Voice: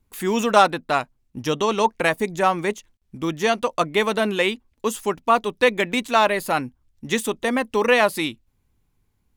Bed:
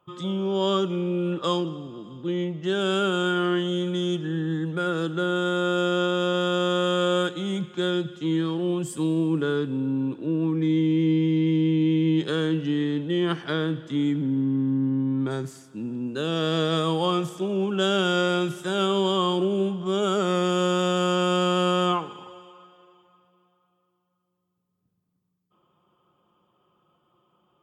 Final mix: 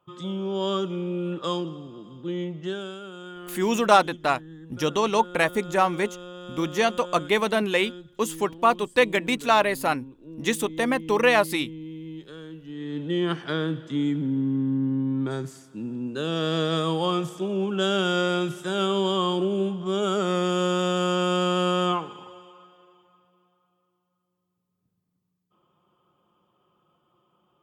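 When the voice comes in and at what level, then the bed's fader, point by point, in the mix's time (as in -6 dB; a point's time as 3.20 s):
3.35 s, -2.0 dB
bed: 2.65 s -3 dB
2.99 s -16.5 dB
12.63 s -16.5 dB
13.06 s -1 dB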